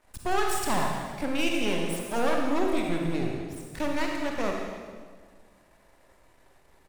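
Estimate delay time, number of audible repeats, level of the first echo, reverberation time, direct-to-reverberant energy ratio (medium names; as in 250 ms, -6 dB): 169 ms, 1, -12.0 dB, 1.6 s, 0.0 dB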